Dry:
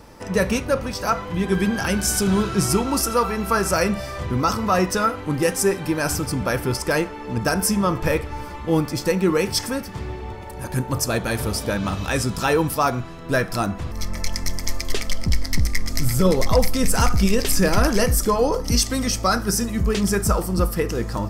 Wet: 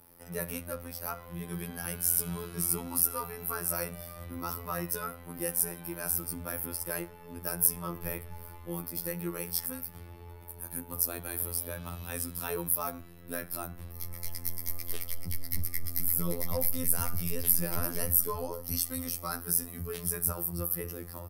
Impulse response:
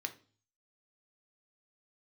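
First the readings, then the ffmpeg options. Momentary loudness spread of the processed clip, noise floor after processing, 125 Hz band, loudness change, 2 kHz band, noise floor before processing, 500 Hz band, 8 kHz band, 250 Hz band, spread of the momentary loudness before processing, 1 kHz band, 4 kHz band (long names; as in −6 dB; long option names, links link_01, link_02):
13 LU, −49 dBFS, −15.5 dB, −10.0 dB, −17.0 dB, −34 dBFS, −17.5 dB, −6.5 dB, −18.0 dB, 8 LU, −17.0 dB, −17.0 dB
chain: -filter_complex "[0:a]afftfilt=real='hypot(re,im)*cos(PI*b)':imag='0':win_size=2048:overlap=0.75,acrossover=split=170|1500[link_01][link_02][link_03];[link_01]aecho=1:1:254:0.501[link_04];[link_03]aexciter=amount=12.8:drive=6.5:freq=10000[link_05];[link_04][link_02][link_05]amix=inputs=3:normalize=0,volume=-13.5dB"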